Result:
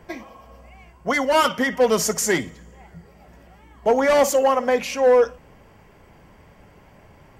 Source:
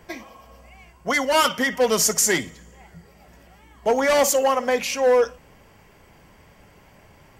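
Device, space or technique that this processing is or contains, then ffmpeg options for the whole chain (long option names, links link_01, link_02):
behind a face mask: -af "highshelf=frequency=2300:gain=-8,volume=2.5dB"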